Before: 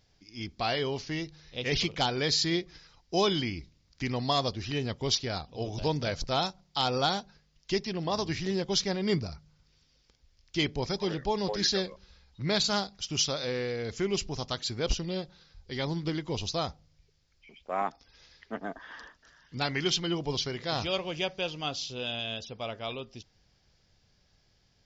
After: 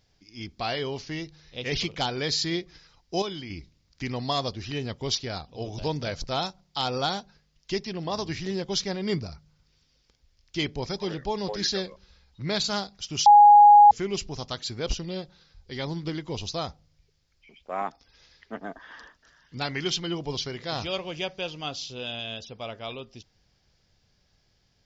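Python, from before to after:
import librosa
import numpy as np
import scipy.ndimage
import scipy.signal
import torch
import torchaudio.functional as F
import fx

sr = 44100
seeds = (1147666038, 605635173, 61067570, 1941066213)

y = fx.edit(x, sr, fx.clip_gain(start_s=3.22, length_s=0.28, db=-7.5),
    fx.bleep(start_s=13.26, length_s=0.65, hz=827.0, db=-9.0), tone=tone)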